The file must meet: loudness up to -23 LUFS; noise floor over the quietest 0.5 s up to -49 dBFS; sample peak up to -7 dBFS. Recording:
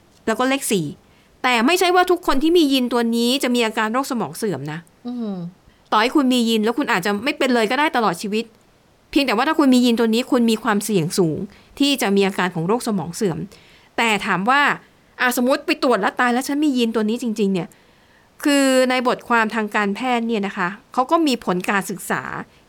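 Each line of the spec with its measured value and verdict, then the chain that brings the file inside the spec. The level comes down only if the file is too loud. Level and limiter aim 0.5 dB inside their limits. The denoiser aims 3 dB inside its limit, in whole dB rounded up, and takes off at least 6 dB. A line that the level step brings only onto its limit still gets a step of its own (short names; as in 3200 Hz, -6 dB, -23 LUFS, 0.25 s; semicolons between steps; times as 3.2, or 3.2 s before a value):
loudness -19.0 LUFS: fail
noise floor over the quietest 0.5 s -55 dBFS: OK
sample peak -5.5 dBFS: fail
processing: gain -4.5 dB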